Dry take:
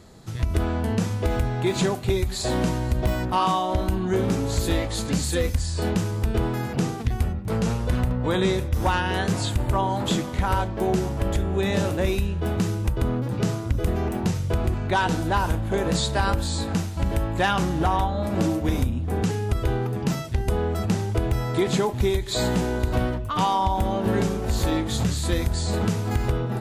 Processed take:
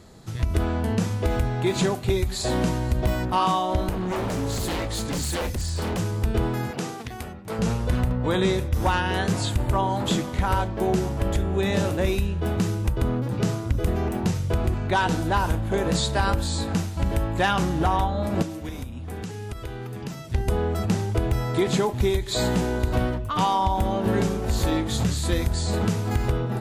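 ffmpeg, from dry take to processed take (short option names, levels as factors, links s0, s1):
-filter_complex "[0:a]asettb=1/sr,asplit=3[s0][s1][s2];[s0]atrim=end=3.894[s3];[s1]atrim=start=3.89:end=5.99,asetpts=PTS-STARTPTS,afade=t=in:d=0.004:c=qsin,afade=t=out:st=2.096:d=0.004:c=qsin,aeval=exprs='0.0841*(abs(mod(val(0)/0.0841+3,4)-2)-1)':c=same[s4];[s2]atrim=start=5.986[s5];[s3][s4]acrossfade=d=0.004:c1=hsin:c2=qsin[s6];[s6][s5]acrossfade=d=0.004:c1=qsin:c2=hsin,asettb=1/sr,asplit=3[s7][s8][s9];[s7]atrim=end=6.714[s10];[s8]atrim=start=6.71:end=7.59,asetpts=PTS-STARTPTS,afade=t=in:d=0.004:c=qsin,afade=t=out:st=0.876:d=0.004:c=qsin,highpass=f=430:p=1[s11];[s9]atrim=start=7.586[s12];[s10][s11]acrossfade=d=0.004:c1=hsin:c2=qsin[s13];[s13][s12]acrossfade=d=0.004:c1=qsin:c2=hsin,asettb=1/sr,asplit=3[s14][s15][s16];[s14]atrim=end=18.424[s17];[s15]atrim=start=18.42:end=20.3,asetpts=PTS-STARTPTS,afade=t=in:d=0.004:c=qsin,afade=t=out:st=1.876:d=0.004:c=qsin,acrossover=split=550|1400[s18][s19][s20];[s18]acompressor=threshold=0.0224:ratio=4[s21];[s19]acompressor=threshold=0.00398:ratio=4[s22];[s20]acompressor=threshold=0.00631:ratio=4[s23];[s21][s22][s23]amix=inputs=3:normalize=0[s24];[s16]atrim=start=20.296[s25];[s17][s24]acrossfade=d=0.004:c1=hsin:c2=qsin[s26];[s26][s25]acrossfade=d=0.004:c1=qsin:c2=hsin"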